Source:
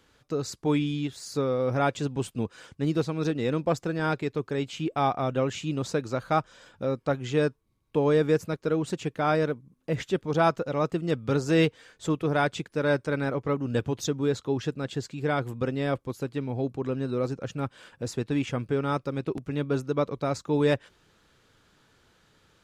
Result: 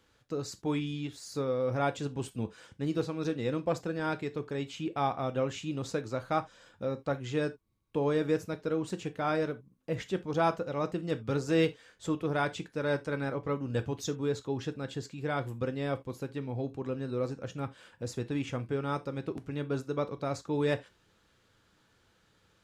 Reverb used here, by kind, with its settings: gated-style reverb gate 100 ms falling, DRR 10 dB; trim -5.5 dB

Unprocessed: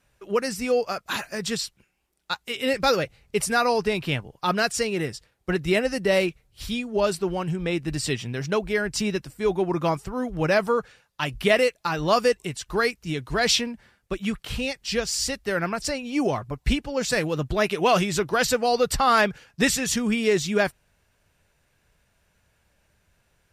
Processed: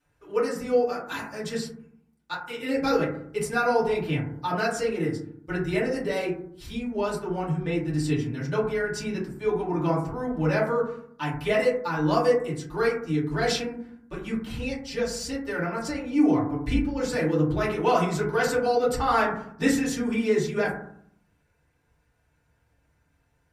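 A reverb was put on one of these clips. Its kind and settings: FDN reverb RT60 0.64 s, low-frequency decay 1.45×, high-frequency decay 0.25×, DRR -8.5 dB; trim -12.5 dB

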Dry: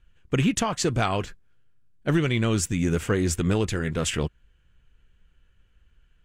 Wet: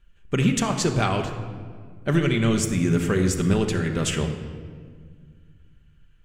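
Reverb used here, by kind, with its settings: simulated room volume 2700 m³, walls mixed, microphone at 1.2 m

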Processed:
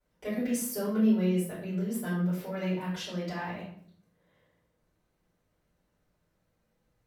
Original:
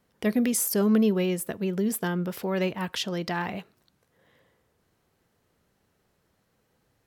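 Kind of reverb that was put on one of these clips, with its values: simulated room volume 84 m³, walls mixed, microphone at 4.4 m; trim -21.5 dB

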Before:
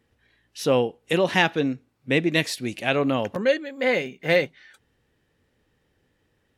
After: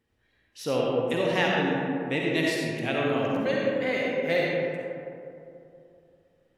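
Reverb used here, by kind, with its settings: algorithmic reverb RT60 2.7 s, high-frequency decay 0.35×, pre-delay 25 ms, DRR -3.5 dB; trim -8 dB

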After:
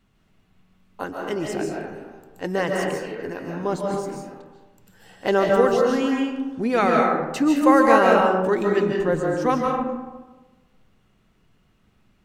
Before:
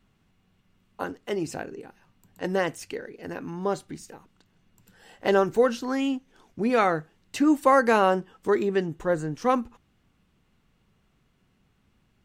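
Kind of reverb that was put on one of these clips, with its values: algorithmic reverb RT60 1.2 s, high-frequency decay 0.45×, pre-delay 105 ms, DRR -1 dB; trim +1 dB

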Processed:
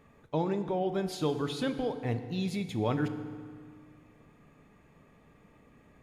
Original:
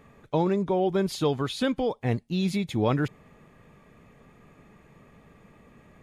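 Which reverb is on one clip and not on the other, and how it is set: FDN reverb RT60 1.9 s, low-frequency decay 1.25×, high-frequency decay 0.75×, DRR 8.5 dB; trim -6 dB

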